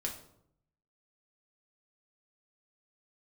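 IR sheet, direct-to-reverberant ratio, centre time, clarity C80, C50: −0.5 dB, 21 ms, 12.0 dB, 8.5 dB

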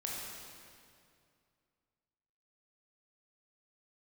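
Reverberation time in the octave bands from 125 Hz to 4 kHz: 2.7, 2.5, 2.4, 2.3, 2.1, 1.9 seconds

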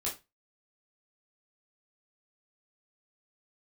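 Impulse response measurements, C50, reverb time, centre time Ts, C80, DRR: 10.5 dB, 0.25 s, 23 ms, 18.5 dB, −6.0 dB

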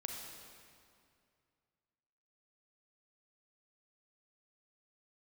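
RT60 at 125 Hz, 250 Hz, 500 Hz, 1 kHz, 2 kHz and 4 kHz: 2.8, 2.5, 2.4, 2.3, 2.1, 1.9 seconds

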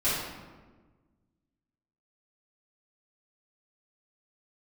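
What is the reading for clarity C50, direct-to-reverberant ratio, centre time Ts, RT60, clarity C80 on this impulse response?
−1.0 dB, −12.5 dB, 82 ms, 1.4 s, 2.5 dB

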